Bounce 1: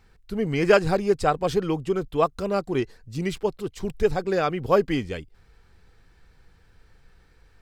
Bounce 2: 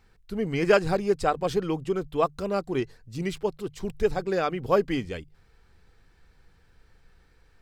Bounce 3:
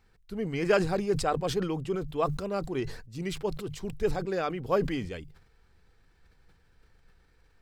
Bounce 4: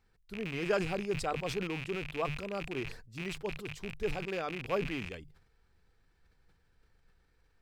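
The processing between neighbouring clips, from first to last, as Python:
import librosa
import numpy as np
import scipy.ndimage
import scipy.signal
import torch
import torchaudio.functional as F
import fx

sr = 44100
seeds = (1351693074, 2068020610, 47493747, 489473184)

y1 = fx.hum_notches(x, sr, base_hz=50, count=3)
y1 = y1 * 10.0 ** (-2.5 / 20.0)
y2 = fx.sustainer(y1, sr, db_per_s=78.0)
y2 = y2 * 10.0 ** (-4.5 / 20.0)
y3 = fx.rattle_buzz(y2, sr, strikes_db=-38.0, level_db=-23.0)
y3 = y3 * 10.0 ** (-6.5 / 20.0)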